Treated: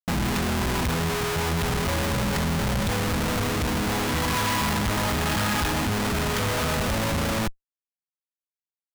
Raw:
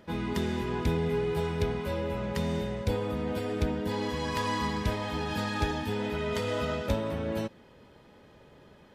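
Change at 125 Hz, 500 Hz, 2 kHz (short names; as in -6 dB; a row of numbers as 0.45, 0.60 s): +6.5, +1.5, +10.0 dB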